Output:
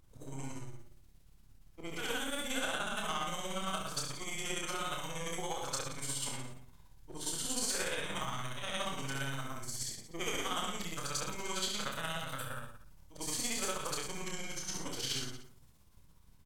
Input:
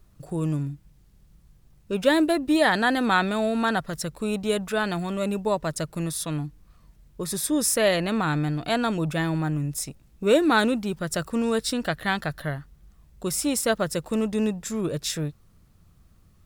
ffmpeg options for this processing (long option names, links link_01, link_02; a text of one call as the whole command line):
ffmpeg -i in.wav -filter_complex "[0:a]afftfilt=real='re':imag='-im':win_size=8192:overlap=0.75,acrossover=split=1100|4100[link_01][link_02][link_03];[link_01]acompressor=threshold=-39dB:ratio=4[link_04];[link_02]acompressor=threshold=-40dB:ratio=4[link_05];[link_03]acompressor=threshold=-48dB:ratio=4[link_06];[link_04][link_05][link_06]amix=inputs=3:normalize=0,asplit=2[link_07][link_08];[link_08]asoftclip=type=hard:threshold=-32.5dB,volume=-10dB[link_09];[link_07][link_09]amix=inputs=2:normalize=0,tremolo=f=17:d=0.74,acrossover=split=740|3700[link_10][link_11][link_12];[link_10]aeval=exprs='max(val(0),0)':channel_layout=same[link_13];[link_13][link_11][link_12]amix=inputs=3:normalize=0,asetrate=37084,aresample=44100,atempo=1.18921,aeval=exprs='0.075*(cos(1*acos(clip(val(0)/0.075,-1,1)))-cos(1*PI/2))+0.000422*(cos(3*acos(clip(val(0)/0.075,-1,1)))-cos(3*PI/2))+0.000668*(cos(8*acos(clip(val(0)/0.075,-1,1)))-cos(8*PI/2))':channel_layout=same,aecho=1:1:30|67.5|114.4|173|246.2:0.631|0.398|0.251|0.158|0.1,adynamicequalizer=threshold=0.00178:dfrequency=3700:dqfactor=0.7:tfrequency=3700:tqfactor=0.7:attack=5:release=100:ratio=0.375:range=4:mode=boostabove:tftype=highshelf" out.wav